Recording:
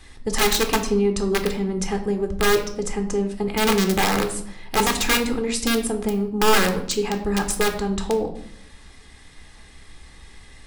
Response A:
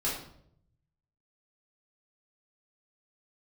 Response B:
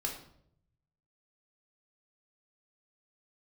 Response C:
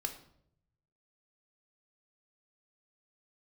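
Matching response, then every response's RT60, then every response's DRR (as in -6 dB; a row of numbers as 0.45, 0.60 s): C; 0.70, 0.70, 0.70 s; -7.5, 0.0, 5.5 dB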